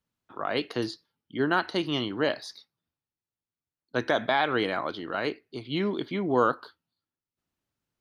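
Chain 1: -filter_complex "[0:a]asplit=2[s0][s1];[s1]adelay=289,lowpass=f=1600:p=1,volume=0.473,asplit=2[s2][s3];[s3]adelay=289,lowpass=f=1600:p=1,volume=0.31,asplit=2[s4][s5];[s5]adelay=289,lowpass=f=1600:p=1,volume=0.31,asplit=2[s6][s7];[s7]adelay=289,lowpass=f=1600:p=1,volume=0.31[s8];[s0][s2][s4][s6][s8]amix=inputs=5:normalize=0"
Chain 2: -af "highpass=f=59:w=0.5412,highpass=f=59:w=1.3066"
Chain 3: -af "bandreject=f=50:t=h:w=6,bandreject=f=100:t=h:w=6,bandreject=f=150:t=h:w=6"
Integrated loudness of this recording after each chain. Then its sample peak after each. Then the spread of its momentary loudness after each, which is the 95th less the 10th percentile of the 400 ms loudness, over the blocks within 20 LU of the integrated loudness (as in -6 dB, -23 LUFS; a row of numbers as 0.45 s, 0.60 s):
-28.5 LUFS, -28.5 LUFS, -28.5 LUFS; -9.0 dBFS, -11.0 dBFS, -11.0 dBFS; 17 LU, 13 LU, 13 LU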